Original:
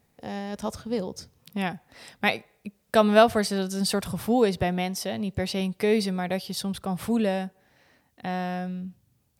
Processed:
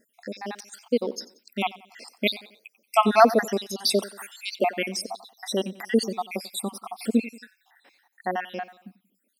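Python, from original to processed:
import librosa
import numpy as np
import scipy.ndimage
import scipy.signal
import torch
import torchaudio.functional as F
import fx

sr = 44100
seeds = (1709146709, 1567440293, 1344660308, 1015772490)

p1 = fx.spec_dropout(x, sr, seeds[0], share_pct=72)
p2 = fx.brickwall_highpass(p1, sr, low_hz=200.0)
p3 = p2 + fx.echo_feedback(p2, sr, ms=91, feedback_pct=43, wet_db=-19.0, dry=0)
y = p3 * librosa.db_to_amplitude(6.5)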